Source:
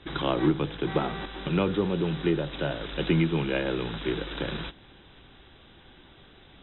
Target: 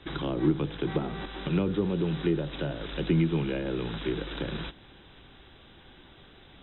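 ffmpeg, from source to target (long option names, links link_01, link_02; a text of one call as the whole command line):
ffmpeg -i in.wav -filter_complex "[0:a]acrossover=split=430[link_01][link_02];[link_02]acompressor=threshold=-36dB:ratio=6[link_03];[link_01][link_03]amix=inputs=2:normalize=0" out.wav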